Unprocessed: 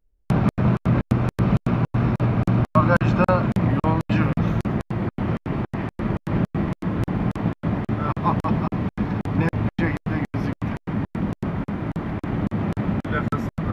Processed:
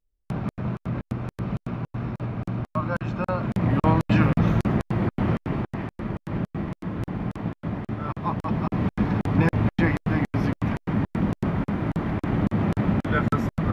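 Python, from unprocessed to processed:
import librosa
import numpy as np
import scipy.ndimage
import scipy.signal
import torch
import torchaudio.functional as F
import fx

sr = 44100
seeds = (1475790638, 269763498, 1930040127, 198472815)

y = fx.gain(x, sr, db=fx.line((3.21, -9.5), (3.86, 1.0), (5.25, 1.0), (6.06, -6.0), (8.4, -6.0), (8.85, 1.0)))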